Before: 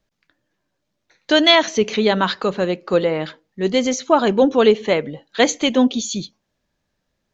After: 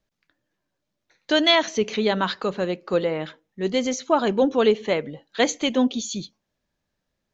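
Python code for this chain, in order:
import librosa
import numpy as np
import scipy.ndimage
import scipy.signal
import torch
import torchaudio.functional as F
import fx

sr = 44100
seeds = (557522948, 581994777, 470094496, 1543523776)

y = fx.notch(x, sr, hz=4600.0, q=6.0, at=(3.14, 3.62))
y = y * 10.0 ** (-5.0 / 20.0)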